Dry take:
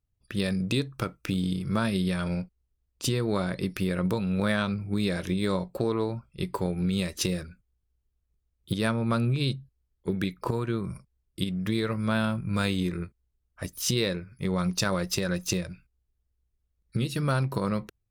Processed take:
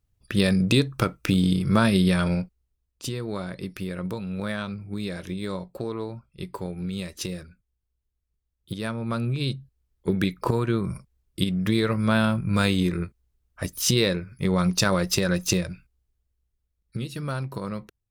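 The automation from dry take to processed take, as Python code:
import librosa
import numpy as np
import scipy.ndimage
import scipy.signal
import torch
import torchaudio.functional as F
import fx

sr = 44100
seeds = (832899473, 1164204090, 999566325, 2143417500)

y = fx.gain(x, sr, db=fx.line((2.19, 7.0), (3.06, -4.0), (8.84, -4.0), (10.14, 5.0), (15.67, 5.0), (17.12, -4.0)))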